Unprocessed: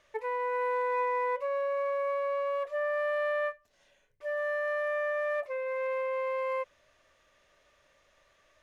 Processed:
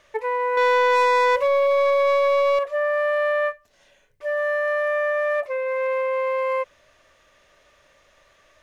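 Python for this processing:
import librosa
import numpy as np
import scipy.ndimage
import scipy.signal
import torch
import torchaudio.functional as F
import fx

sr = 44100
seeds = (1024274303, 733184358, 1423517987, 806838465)

y = fx.leveller(x, sr, passes=2, at=(0.57, 2.59))
y = y * librosa.db_to_amplitude(8.5)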